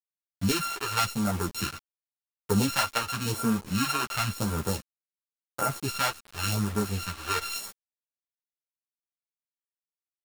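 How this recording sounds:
a buzz of ramps at a fixed pitch in blocks of 32 samples
phaser sweep stages 2, 0.93 Hz, lowest notch 170–3,300 Hz
a quantiser's noise floor 6 bits, dither none
a shimmering, thickened sound

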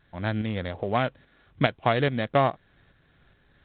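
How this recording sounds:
a buzz of ramps at a fixed pitch in blocks of 8 samples
tremolo saw up 2.4 Hz, depth 50%
mu-law

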